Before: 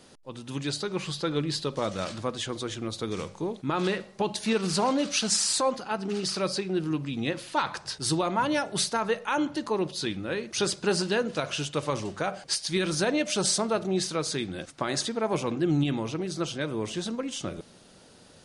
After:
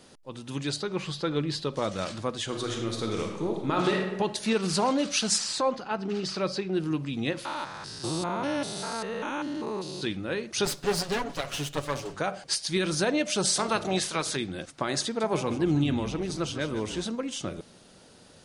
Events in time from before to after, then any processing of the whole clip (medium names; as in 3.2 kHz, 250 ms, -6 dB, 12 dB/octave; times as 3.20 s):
0.76–1.74 s: treble shelf 7.7 kHz -9.5 dB
2.44–4.00 s: reverb throw, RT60 1.1 s, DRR 1.5 dB
5.38–6.73 s: distance through air 86 m
7.45–10.03 s: spectrogram pixelated in time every 200 ms
10.65–12.15 s: comb filter that takes the minimum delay 7.1 ms
13.55–14.35 s: spectral peaks clipped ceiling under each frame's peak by 15 dB
15.05–17.06 s: frequency-shifting echo 151 ms, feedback 44%, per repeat -47 Hz, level -11 dB